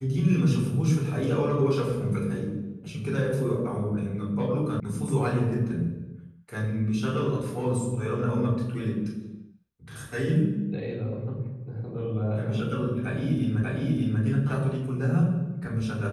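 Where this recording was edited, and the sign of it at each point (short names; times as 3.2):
4.8 sound cut off
13.63 repeat of the last 0.59 s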